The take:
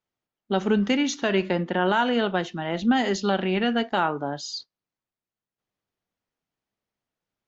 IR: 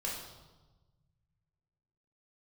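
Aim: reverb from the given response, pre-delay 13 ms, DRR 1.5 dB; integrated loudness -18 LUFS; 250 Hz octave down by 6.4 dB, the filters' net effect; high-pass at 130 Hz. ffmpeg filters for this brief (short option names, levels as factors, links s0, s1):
-filter_complex "[0:a]highpass=130,equalizer=f=250:t=o:g=-7.5,asplit=2[s0][s1];[1:a]atrim=start_sample=2205,adelay=13[s2];[s1][s2]afir=irnorm=-1:irlink=0,volume=0.631[s3];[s0][s3]amix=inputs=2:normalize=0,volume=2.11"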